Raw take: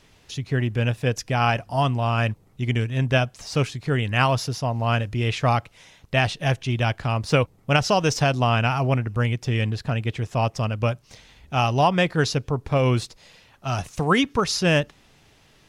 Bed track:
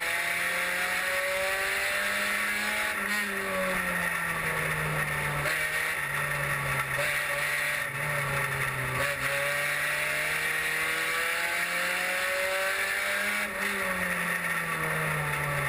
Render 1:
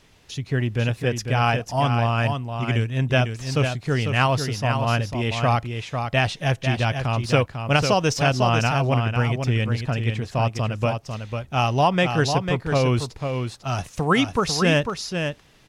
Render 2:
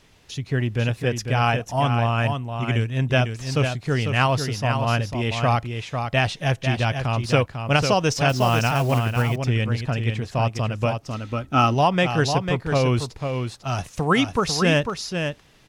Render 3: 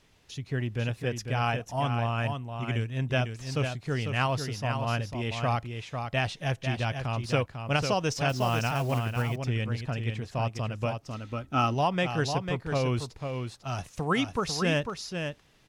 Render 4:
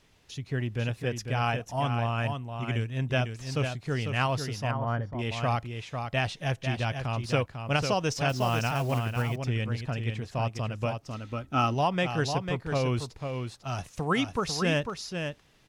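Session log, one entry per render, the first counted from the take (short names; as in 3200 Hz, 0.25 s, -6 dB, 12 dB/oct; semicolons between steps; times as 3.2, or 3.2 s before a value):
echo 0.498 s -6.5 dB
1.47–2.8 notch 4800 Hz, Q 5.2; 8.29–9.38 block floating point 5-bit; 11–11.73 small resonant body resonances 280/1300 Hz, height 10 dB -> 15 dB
gain -7.5 dB
4.71–5.19 polynomial smoothing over 41 samples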